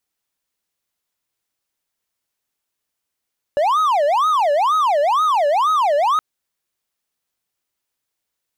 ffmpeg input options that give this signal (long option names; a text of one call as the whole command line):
ffmpeg -f lavfi -i "aevalsrc='0.266*(1-4*abs(mod((920.5*t-349.5/(2*PI*2.1)*sin(2*PI*2.1*t))+0.25,1)-0.5))':duration=2.62:sample_rate=44100" out.wav